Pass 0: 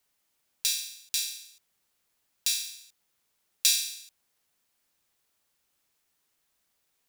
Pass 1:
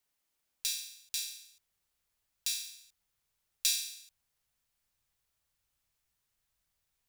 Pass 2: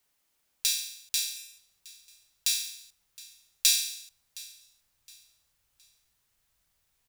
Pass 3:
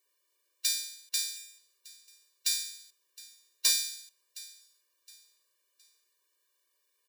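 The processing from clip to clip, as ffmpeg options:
-af "asubboost=boost=6.5:cutoff=110,volume=-6.5dB"
-af "aecho=1:1:716|1432|2148:0.0891|0.0303|0.0103,volume=7dB"
-af "volume=14.5dB,asoftclip=hard,volume=-14.5dB,afftfilt=real='re*eq(mod(floor(b*sr/1024/310),2),1)':imag='im*eq(mod(floor(b*sr/1024/310),2),1)':win_size=1024:overlap=0.75,volume=1.5dB"

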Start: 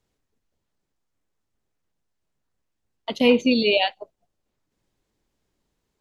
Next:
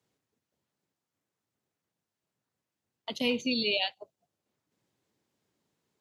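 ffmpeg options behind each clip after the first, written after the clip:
-filter_complex "[0:a]highpass=f=100:w=0.5412,highpass=f=100:w=1.3066,acrossover=split=130|3000[a][b][c];[b]acompressor=threshold=-48dB:ratio=1.5[d];[a][d][c]amix=inputs=3:normalize=0,volume=-2dB"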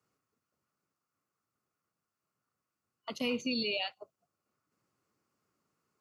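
-af "alimiter=limit=-20dB:level=0:latency=1:release=38,superequalizer=10b=3.16:13b=0.447,volume=-2.5dB"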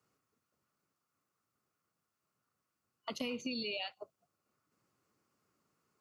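-af "acompressor=threshold=-37dB:ratio=6,volume=1.5dB"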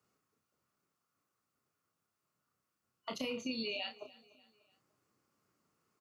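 -filter_complex "[0:a]asplit=2[a][b];[b]adelay=31,volume=-6dB[c];[a][c]amix=inputs=2:normalize=0,aecho=1:1:295|590|885:0.0891|0.041|0.0189,volume=-1dB"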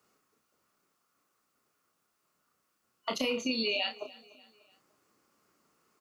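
-af "equalizer=f=110:t=o:w=1.3:g=-10.5,volume=8.5dB"

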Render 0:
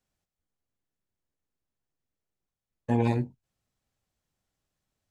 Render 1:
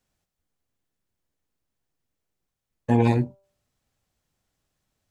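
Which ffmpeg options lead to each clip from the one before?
-af "bandreject=f=195.9:t=h:w=4,bandreject=f=391.8:t=h:w=4,bandreject=f=587.7:t=h:w=4,bandreject=f=783.6:t=h:w=4,bandreject=f=979.5:t=h:w=4,bandreject=f=1.1754k:t=h:w=4,bandreject=f=1.3713k:t=h:w=4,volume=5.5dB"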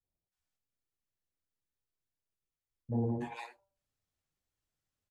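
-filter_complex "[0:a]acrossover=split=230|760[a][b][c];[b]adelay=30[d];[c]adelay=320[e];[a][d][e]amix=inputs=3:normalize=0,flanger=delay=2.1:depth=10:regen=-41:speed=1.1:shape=sinusoidal,volume=-8dB"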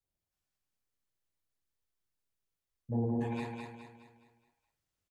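-af "aecho=1:1:209|418|627|836|1045|1254:0.631|0.278|0.122|0.0537|0.0236|0.0104"

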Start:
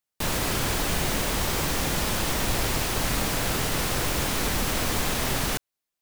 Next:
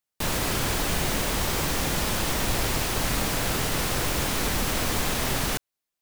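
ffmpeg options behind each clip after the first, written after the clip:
-af anull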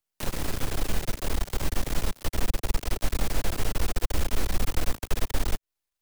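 -filter_complex "[0:a]asubboost=boost=6.5:cutoff=52,aeval=exprs='max(val(0),0)':c=same,acrossover=split=110|630[a][b][c];[a]acompressor=threshold=-23dB:ratio=4[d];[b]acompressor=threshold=-38dB:ratio=4[e];[c]acompressor=threshold=-39dB:ratio=4[f];[d][e][f]amix=inputs=3:normalize=0,volume=3.5dB"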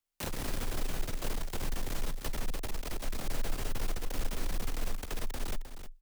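-af "alimiter=limit=-19.5dB:level=0:latency=1:release=244,afreqshift=-22,aecho=1:1:310:0.316,volume=-2.5dB"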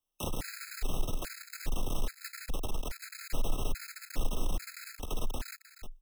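-af "afftfilt=real='re*gt(sin(2*PI*1.2*pts/sr)*(1-2*mod(floor(b*sr/1024/1300),2)),0)':imag='im*gt(sin(2*PI*1.2*pts/sr)*(1-2*mod(floor(b*sr/1024/1300),2)),0)':win_size=1024:overlap=0.75,volume=2.5dB"

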